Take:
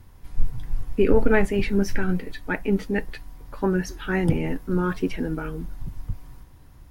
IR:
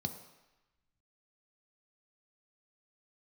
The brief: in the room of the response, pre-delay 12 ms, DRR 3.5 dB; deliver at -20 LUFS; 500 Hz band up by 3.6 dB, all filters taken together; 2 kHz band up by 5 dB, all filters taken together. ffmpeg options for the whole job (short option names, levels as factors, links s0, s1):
-filter_complex "[0:a]equalizer=f=500:t=o:g=4.5,equalizer=f=2000:t=o:g=6,asplit=2[s0][s1];[1:a]atrim=start_sample=2205,adelay=12[s2];[s1][s2]afir=irnorm=-1:irlink=0,volume=0.631[s3];[s0][s3]amix=inputs=2:normalize=0,volume=0.794"